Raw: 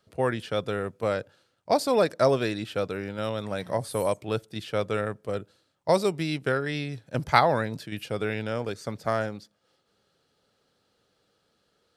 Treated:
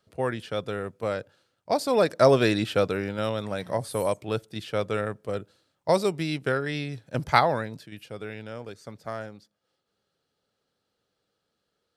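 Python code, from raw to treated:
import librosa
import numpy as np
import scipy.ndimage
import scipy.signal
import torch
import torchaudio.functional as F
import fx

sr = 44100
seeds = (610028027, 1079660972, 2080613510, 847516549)

y = fx.gain(x, sr, db=fx.line((1.77, -2.0), (2.56, 7.0), (3.58, 0.0), (7.38, 0.0), (7.96, -8.0)))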